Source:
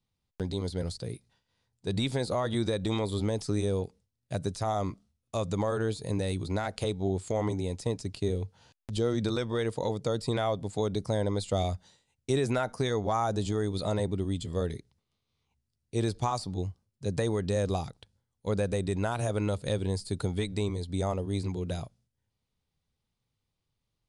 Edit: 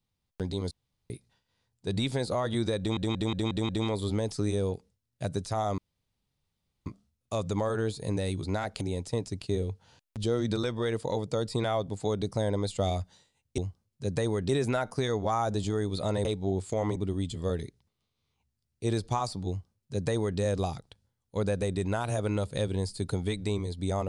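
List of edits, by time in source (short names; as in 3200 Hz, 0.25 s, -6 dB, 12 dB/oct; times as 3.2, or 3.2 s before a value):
0.71–1.1 room tone
2.79 stutter 0.18 s, 6 plays
4.88 insert room tone 1.08 s
6.83–7.54 move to 14.07
16.59–17.5 copy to 12.31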